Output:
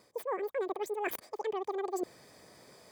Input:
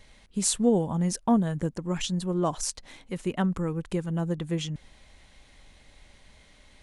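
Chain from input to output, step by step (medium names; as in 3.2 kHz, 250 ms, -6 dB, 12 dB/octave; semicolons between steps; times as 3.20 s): tracing distortion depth 0.03 ms; treble shelf 7.1 kHz +6.5 dB; comb of notches 590 Hz; speed mistake 33 rpm record played at 78 rpm; high-pass 410 Hz 12 dB/octave; tilt EQ -3 dB/octave; reverse; compression 10:1, threshold -38 dBFS, peak gain reduction 20.5 dB; reverse; trim +6 dB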